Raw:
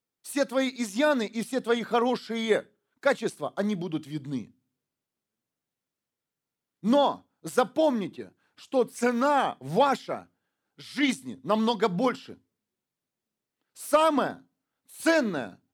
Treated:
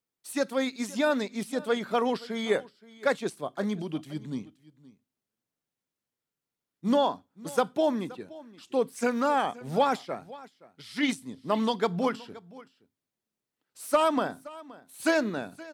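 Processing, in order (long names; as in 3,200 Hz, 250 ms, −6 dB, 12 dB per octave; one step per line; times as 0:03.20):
single-tap delay 522 ms −20 dB
level −2 dB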